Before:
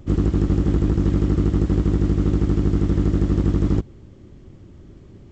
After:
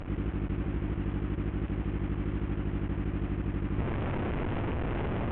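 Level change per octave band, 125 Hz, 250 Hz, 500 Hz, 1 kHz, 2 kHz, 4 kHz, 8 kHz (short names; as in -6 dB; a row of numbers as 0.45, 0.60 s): -11.5 dB, -12.0 dB, -9.5 dB, -1.5 dB, +0.5 dB, -7.0 dB, n/a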